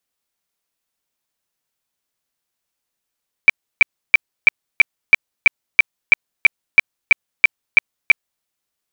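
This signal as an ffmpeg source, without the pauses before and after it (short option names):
-f lavfi -i "aevalsrc='0.708*sin(2*PI*2330*mod(t,0.33))*lt(mod(t,0.33),37/2330)':d=4.95:s=44100"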